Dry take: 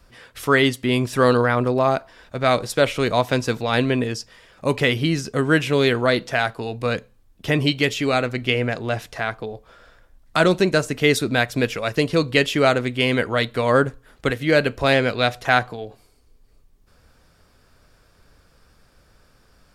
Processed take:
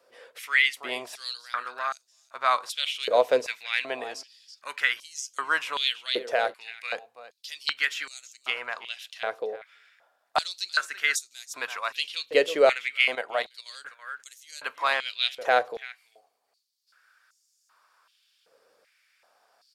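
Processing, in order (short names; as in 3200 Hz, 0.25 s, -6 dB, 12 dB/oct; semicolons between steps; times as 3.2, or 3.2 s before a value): 13.15–13.66 level quantiser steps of 10 dB; on a send: echo 0.331 s -17 dB; on the sum: stepped high-pass 2.6 Hz 500–6500 Hz; gain -8 dB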